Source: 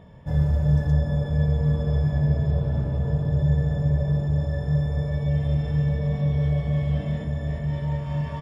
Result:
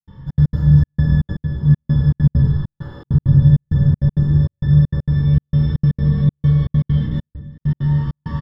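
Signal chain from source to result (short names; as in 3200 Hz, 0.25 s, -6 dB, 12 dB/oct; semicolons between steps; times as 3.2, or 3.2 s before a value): 1.23–1.65 compressor 4:1, threshold -25 dBFS, peak gain reduction 7.5 dB; 2.48–3.03 HPF 1000 Hz -> 390 Hz 24 dB/oct; frequency-shifting echo 0.21 s, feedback 60%, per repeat -130 Hz, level -22 dB; 7.05–7.61 gate with hold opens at -17 dBFS; fixed phaser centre 2400 Hz, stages 6; reverb RT60 0.55 s, pre-delay 5 ms, DRR -10.5 dB; step gate ".xxx.x.xxxx." 198 bpm -60 dB; gain -3 dB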